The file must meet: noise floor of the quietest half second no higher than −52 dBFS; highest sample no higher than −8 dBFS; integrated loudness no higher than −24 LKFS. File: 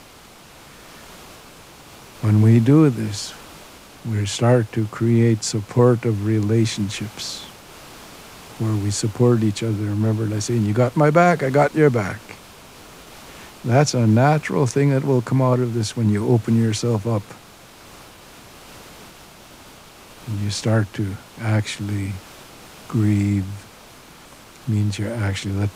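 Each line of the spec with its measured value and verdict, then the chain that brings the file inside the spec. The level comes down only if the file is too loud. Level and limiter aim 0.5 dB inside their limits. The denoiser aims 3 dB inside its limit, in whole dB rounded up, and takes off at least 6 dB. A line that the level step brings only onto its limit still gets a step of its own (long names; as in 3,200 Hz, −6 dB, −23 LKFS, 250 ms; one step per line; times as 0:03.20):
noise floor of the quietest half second −45 dBFS: out of spec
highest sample −3.0 dBFS: out of spec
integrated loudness −19.5 LKFS: out of spec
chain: broadband denoise 6 dB, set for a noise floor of −45 dBFS
level −5 dB
brickwall limiter −8.5 dBFS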